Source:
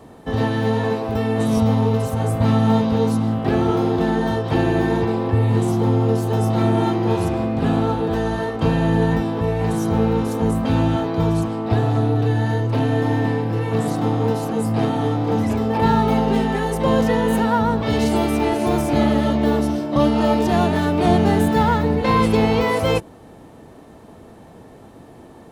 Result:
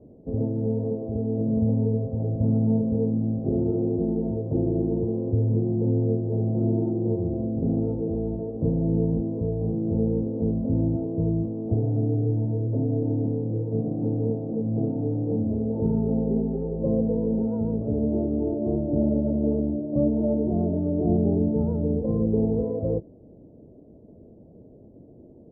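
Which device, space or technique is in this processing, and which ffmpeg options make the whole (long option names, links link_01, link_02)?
under water: -af "lowpass=frequency=450:width=0.5412,lowpass=frequency=450:width=1.3066,equalizer=frequency=600:width_type=o:width=0.37:gain=9,volume=-5dB"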